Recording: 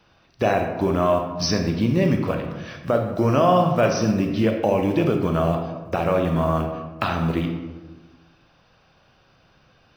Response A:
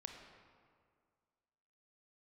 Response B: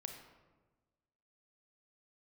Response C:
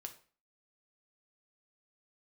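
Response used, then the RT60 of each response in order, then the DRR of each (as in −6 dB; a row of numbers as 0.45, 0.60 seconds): B; 2.0, 1.3, 0.40 seconds; 3.0, 4.0, 4.5 decibels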